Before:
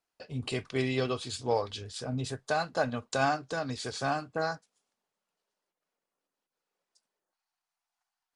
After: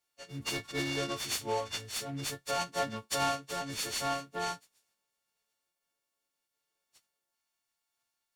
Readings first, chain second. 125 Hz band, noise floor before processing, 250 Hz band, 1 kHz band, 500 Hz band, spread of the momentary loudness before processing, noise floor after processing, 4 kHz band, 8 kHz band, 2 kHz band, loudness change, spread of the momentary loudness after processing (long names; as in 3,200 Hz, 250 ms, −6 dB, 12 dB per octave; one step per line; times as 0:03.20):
−6.5 dB, below −85 dBFS, −5.0 dB, −2.5 dB, −5.5 dB, 8 LU, below −85 dBFS, +3.0 dB, +6.5 dB, −3.0 dB, −2.0 dB, 6 LU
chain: every partial snapped to a pitch grid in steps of 4 semitones
short delay modulated by noise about 1,700 Hz, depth 0.032 ms
level −5.5 dB